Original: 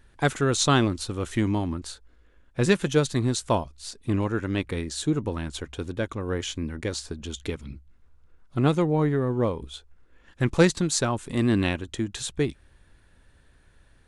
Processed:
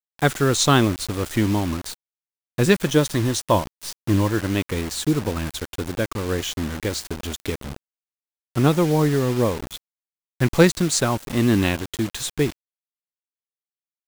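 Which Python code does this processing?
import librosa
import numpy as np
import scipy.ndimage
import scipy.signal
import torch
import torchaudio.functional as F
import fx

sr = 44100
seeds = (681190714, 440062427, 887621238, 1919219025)

y = fx.ripple_eq(x, sr, per_octave=1.2, db=6, at=(2.89, 4.47))
y = fx.quant_dither(y, sr, seeds[0], bits=6, dither='none')
y = y * 10.0 ** (4.0 / 20.0)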